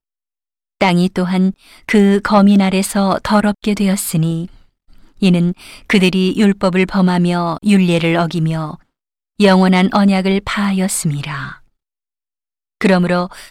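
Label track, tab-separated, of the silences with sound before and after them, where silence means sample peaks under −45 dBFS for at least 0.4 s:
8.820000	9.390000	silence
11.640000	12.810000	silence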